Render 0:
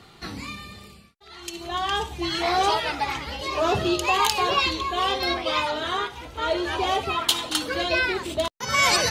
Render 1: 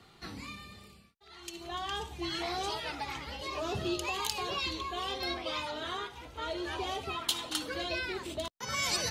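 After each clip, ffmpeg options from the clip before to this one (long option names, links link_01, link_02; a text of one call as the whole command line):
ffmpeg -i in.wav -filter_complex "[0:a]acrossover=split=360|3000[link_01][link_02][link_03];[link_02]acompressor=threshold=-27dB:ratio=6[link_04];[link_01][link_04][link_03]amix=inputs=3:normalize=0,volume=-8.5dB" out.wav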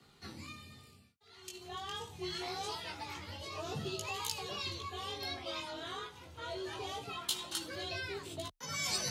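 ffmpeg -i in.wav -af "flanger=delay=16:depth=4.5:speed=0.24,bass=frequency=250:gain=4,treble=frequency=4000:gain=5,afreqshift=25,volume=-3.5dB" out.wav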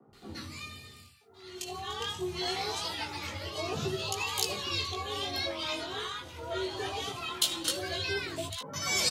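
ffmpeg -i in.wav -filter_complex "[0:a]acrossover=split=160|1000[link_01][link_02][link_03];[link_01]adelay=60[link_04];[link_03]adelay=130[link_05];[link_04][link_02][link_05]amix=inputs=3:normalize=0,volume=7.5dB" out.wav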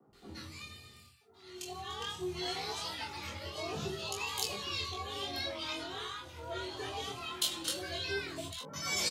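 ffmpeg -i in.wav -filter_complex "[0:a]asplit=2[link_01][link_02];[link_02]adelay=25,volume=-5dB[link_03];[link_01][link_03]amix=inputs=2:normalize=0,volume=-5.5dB" out.wav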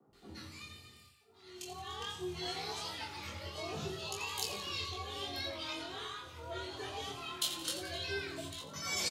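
ffmpeg -i in.wav -af "aecho=1:1:86|172|258|344|430|516:0.266|0.138|0.0719|0.0374|0.0195|0.0101,volume=-2.5dB" out.wav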